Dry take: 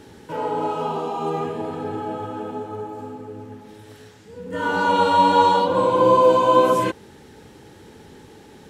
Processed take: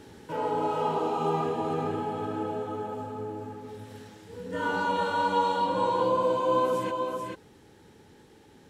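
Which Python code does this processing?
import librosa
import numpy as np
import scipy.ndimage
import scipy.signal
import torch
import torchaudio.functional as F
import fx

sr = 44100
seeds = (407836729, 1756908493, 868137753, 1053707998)

p1 = fx.rider(x, sr, range_db=4, speed_s=0.5)
p2 = p1 + fx.echo_single(p1, sr, ms=437, db=-4.0, dry=0)
y = F.gain(torch.from_numpy(p2), -8.0).numpy()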